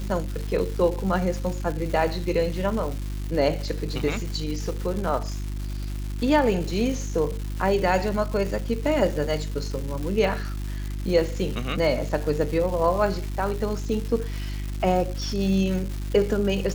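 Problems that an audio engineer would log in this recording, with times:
surface crackle 440 per second −31 dBFS
mains hum 50 Hz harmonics 7 −30 dBFS

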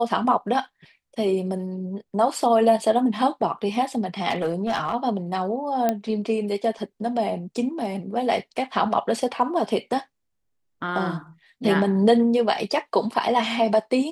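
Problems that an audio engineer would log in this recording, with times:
0:04.29–0:04.95: clipping −18.5 dBFS
0:05.89: click −9 dBFS

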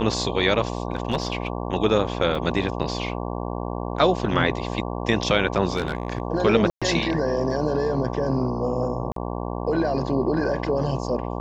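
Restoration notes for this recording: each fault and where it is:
mains buzz 60 Hz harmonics 19 −29 dBFS
0:00.68–0:01.47: clipping −16.5 dBFS
0:02.35: drop-out 2.7 ms
0:05.76–0:06.22: clipping −19 dBFS
0:06.70–0:06.82: drop-out 116 ms
0:09.12–0:09.16: drop-out 43 ms

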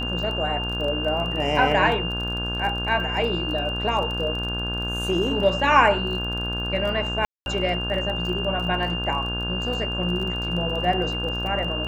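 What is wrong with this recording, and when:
mains buzz 60 Hz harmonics 28 −30 dBFS
surface crackle 26 per second −30 dBFS
whistle 2,800 Hz −28 dBFS
0:07.25–0:07.46: drop-out 211 ms

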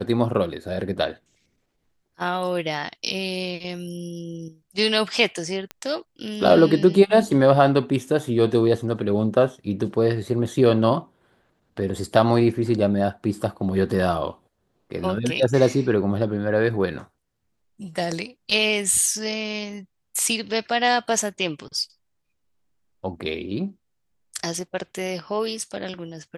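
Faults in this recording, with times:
0:05.71: click −17 dBFS

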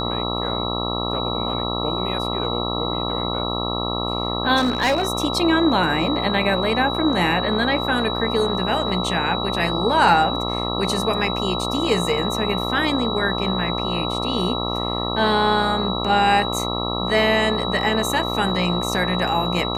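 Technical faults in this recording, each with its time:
mains buzz 60 Hz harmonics 22 −26 dBFS
whistle 3,900 Hz −27 dBFS
0:04.56–0:05.03: clipping −14.5 dBFS

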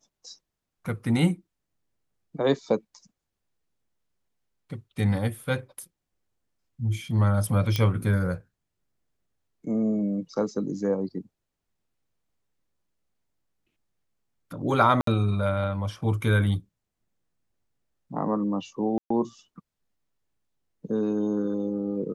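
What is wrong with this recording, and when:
0:07.76: click −12 dBFS
0:15.01–0:15.07: drop-out 63 ms
0:18.98–0:19.10: drop-out 124 ms

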